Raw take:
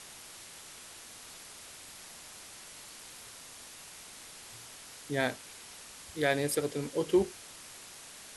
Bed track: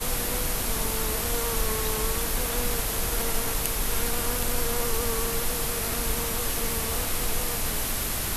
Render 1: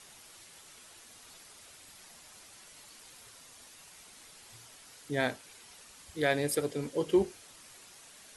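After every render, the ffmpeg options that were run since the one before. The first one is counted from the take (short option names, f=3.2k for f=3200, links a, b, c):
-af "afftdn=nr=7:nf=-50"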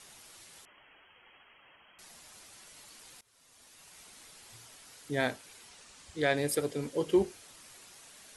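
-filter_complex "[0:a]asettb=1/sr,asplit=3[a][b][c];[a]atrim=end=0.654[d];[b]atrim=start=0.65:end=1.99,asetpts=PTS-STARTPTS,afade=t=in:d=0.004:c=qsin,afade=t=out:st=1.336:d=0.004:c=qsin,lowpass=f=2.8k:t=q:w=0.5098,lowpass=f=2.8k:t=q:w=0.6013,lowpass=f=2.8k:t=q:w=0.9,lowpass=f=2.8k:t=q:w=2.563,afreqshift=-3300[e];[c]atrim=start=1.986[f];[d][e]acrossfade=d=0.004:c1=hsin:c2=qsin[g];[g][f]acrossfade=d=0.004:c1=qsin:c2=hsin,asettb=1/sr,asplit=3[h][i][j];[h]atrim=end=5.694[k];[i]atrim=start=5.69:end=6.37,asetpts=PTS-STARTPTS,afade=t=in:d=0.004:c=qsin,afade=t=out:st=0.676:d=0.004:c=qsin,lowpass=f=9.2k:w=0.5412,lowpass=f=9.2k:w=1.3066[l];[j]atrim=start=6.366[m];[k][l]acrossfade=d=0.004:c1=hsin:c2=qsin[n];[n][m]acrossfade=d=0.004:c1=qsin:c2=hsin,asplit=2[o][p];[o]atrim=end=3.21,asetpts=PTS-STARTPTS,afade=t=out:st=3.206:d=0.004:c=hsin:silence=0.0749894[q];[p]atrim=start=3.21,asetpts=PTS-STARTPTS,afade=t=in:d=0.8:silence=0.0749894[r];[q][r]concat=n=2:v=0:a=1"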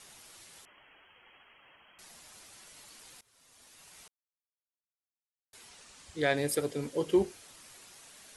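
-filter_complex "[0:a]asplit=3[a][b][c];[a]atrim=end=4.08,asetpts=PTS-STARTPTS,afade=t=out:st=4.076:d=0.004:c=hsin[d];[b]atrim=start=4.08:end=5.53,asetpts=PTS-STARTPTS,volume=0[e];[c]atrim=start=5.53,asetpts=PTS-STARTPTS,afade=t=in:d=0.004:c=hsin[f];[d][e][f]concat=n=3:v=0:a=1"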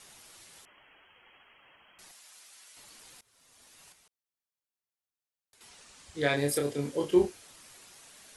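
-filter_complex "[0:a]asettb=1/sr,asplit=3[a][b][c];[a]atrim=end=2.114[d];[b]atrim=start=2.11:end=2.77,asetpts=PTS-STARTPTS,afade=t=in:d=0.004:c=qsin,afade=t=out:st=0.656:d=0.004:c=qsin,highpass=f=1.4k:p=1[e];[c]atrim=start=2.766[f];[d][e]acrossfade=d=0.004:c1=hsin:c2=qsin[g];[g][f]acrossfade=d=0.004:c1=qsin:c2=hsin,asettb=1/sr,asplit=3[h][i][j];[h]atrim=end=3.924[k];[i]atrim=start=3.92:end=5.61,asetpts=PTS-STARTPTS,afade=t=in:d=0.004:c=qsin,afade=t=out:st=1.686:d=0.004:c=qsin,acompressor=threshold=-60dB:ratio=6:attack=3.2:release=140:knee=1:detection=peak[l];[j]atrim=start=5.606[m];[k][l]acrossfade=d=0.004:c1=hsin:c2=qsin[n];[n][m]acrossfade=d=0.004:c1=qsin:c2=hsin,asettb=1/sr,asplit=3[o][p][q];[o]atrim=end=6.124[r];[p]atrim=start=6.12:end=7.3,asetpts=PTS-STARTPTS,afade=t=in:d=0.004:c=qsin,afade=t=out:st=1.176:d=0.004:c=qsin,asplit=2[s][t];[t]adelay=28,volume=-3.5dB[u];[s][u]amix=inputs=2:normalize=0,atrim=end_sample=52038[v];[q]atrim=start=7.296[w];[r][v]acrossfade=d=0.004:c1=hsin:c2=qsin[x];[x][w]acrossfade=d=0.004:c1=qsin:c2=hsin"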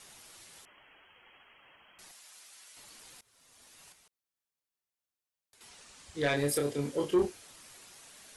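-af "asoftclip=type=tanh:threshold=-19.5dB"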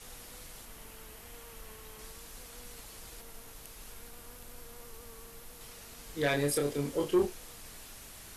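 -filter_complex "[1:a]volume=-22.5dB[a];[0:a][a]amix=inputs=2:normalize=0"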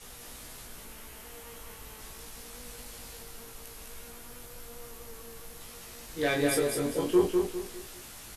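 -filter_complex "[0:a]asplit=2[a][b];[b]adelay=17,volume=-3.5dB[c];[a][c]amix=inputs=2:normalize=0,asplit=2[d][e];[e]aecho=0:1:201|402|603|804:0.631|0.208|0.0687|0.0227[f];[d][f]amix=inputs=2:normalize=0"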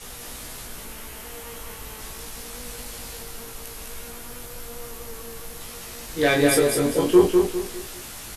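-af "volume=8.5dB"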